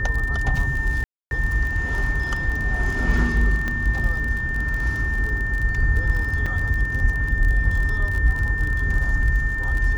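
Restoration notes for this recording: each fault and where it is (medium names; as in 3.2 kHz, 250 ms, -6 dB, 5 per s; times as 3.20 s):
crackle 35 per s -26 dBFS
whine 1.8 kHz -25 dBFS
1.04–1.31 s: dropout 271 ms
3.68 s: pop -13 dBFS
6.46 s: dropout 4.4 ms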